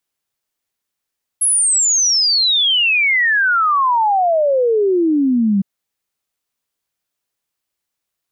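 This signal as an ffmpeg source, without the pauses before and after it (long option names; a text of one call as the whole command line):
ffmpeg -f lavfi -i "aevalsrc='0.266*clip(min(t,4.21-t)/0.01,0,1)*sin(2*PI*11000*4.21/log(190/11000)*(exp(log(190/11000)*t/4.21)-1))':duration=4.21:sample_rate=44100" out.wav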